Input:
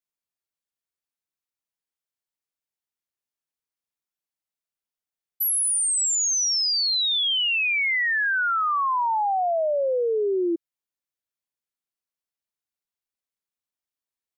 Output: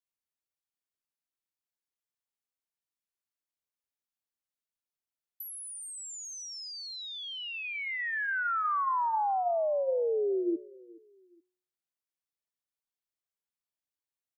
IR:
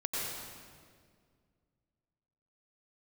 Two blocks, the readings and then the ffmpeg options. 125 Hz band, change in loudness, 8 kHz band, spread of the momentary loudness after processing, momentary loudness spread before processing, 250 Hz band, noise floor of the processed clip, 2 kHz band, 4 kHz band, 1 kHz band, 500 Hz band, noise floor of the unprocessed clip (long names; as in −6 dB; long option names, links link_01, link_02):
can't be measured, −10.5 dB, −19.0 dB, 10 LU, 4 LU, −6.0 dB, below −85 dBFS, −10.0 dB, −17.5 dB, −6.0 dB, −5.5 dB, below −85 dBFS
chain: -filter_complex "[0:a]bandreject=frequency=182.1:width_type=h:width=4,bandreject=frequency=364.2:width_type=h:width=4,bandreject=frequency=546.3:width_type=h:width=4,bandreject=frequency=728.4:width_type=h:width=4,bandreject=frequency=910.5:width_type=h:width=4,bandreject=frequency=1092.6:width_type=h:width=4,bandreject=frequency=1274.7:width_type=h:width=4,bandreject=frequency=1456.8:width_type=h:width=4,bandreject=frequency=1638.9:width_type=h:width=4,bandreject=frequency=1821:width_type=h:width=4,bandreject=frequency=2003.1:width_type=h:width=4,bandreject=frequency=2185.2:width_type=h:width=4,bandreject=frequency=2367.3:width_type=h:width=4,bandreject=frequency=2549.4:width_type=h:width=4,bandreject=frequency=2731.5:width_type=h:width=4,acrossover=split=350|1700[link_01][link_02][link_03];[link_03]acompressor=threshold=-38dB:ratio=5[link_04];[link_01][link_02][link_04]amix=inputs=3:normalize=0,aecho=1:1:422|844:0.0708|0.0241,volume=-5.5dB"